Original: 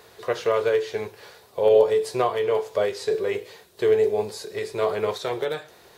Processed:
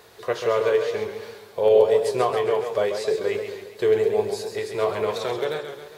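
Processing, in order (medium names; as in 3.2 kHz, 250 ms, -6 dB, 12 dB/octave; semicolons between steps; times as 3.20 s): modulated delay 135 ms, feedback 52%, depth 113 cents, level -7.5 dB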